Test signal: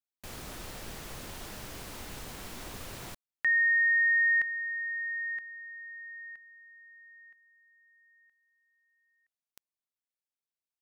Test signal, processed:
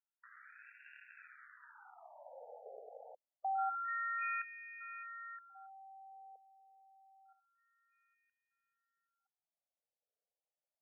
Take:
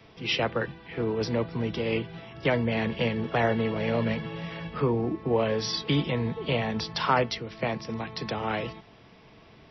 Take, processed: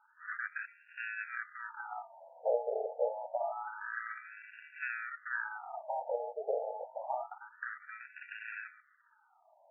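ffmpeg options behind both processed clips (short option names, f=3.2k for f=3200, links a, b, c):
-af "acrusher=samples=41:mix=1:aa=0.000001,afftfilt=real='re*between(b*sr/1024,600*pow(2000/600,0.5+0.5*sin(2*PI*0.27*pts/sr))/1.41,600*pow(2000/600,0.5+0.5*sin(2*PI*0.27*pts/sr))*1.41)':imag='im*between(b*sr/1024,600*pow(2000/600,0.5+0.5*sin(2*PI*0.27*pts/sr))/1.41,600*pow(2000/600,0.5+0.5*sin(2*PI*0.27*pts/sr))*1.41)':win_size=1024:overlap=0.75,volume=-1.5dB"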